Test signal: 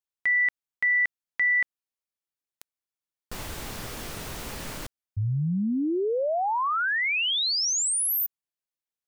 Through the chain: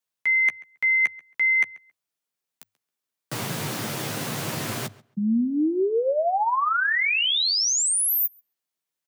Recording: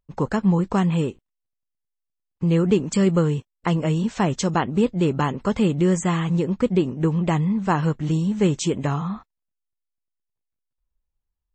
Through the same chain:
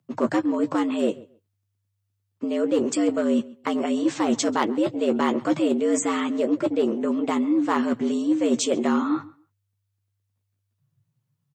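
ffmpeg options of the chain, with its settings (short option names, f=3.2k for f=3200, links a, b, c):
-filter_complex "[0:a]areverse,acompressor=threshold=-29dB:ratio=10:attack=85:release=83:knee=6:detection=rms,areverse,asoftclip=type=hard:threshold=-21dB,afreqshift=99,asplit=2[a][b];[b]adelay=13,volume=-8dB[c];[a][c]amix=inputs=2:normalize=0,asplit=2[d][e];[e]adelay=136,lowpass=f=3.5k:p=1,volume=-21dB,asplit=2[f][g];[g]adelay=136,lowpass=f=3.5k:p=1,volume=0.18[h];[d][f][h]amix=inputs=3:normalize=0,volume=6dB"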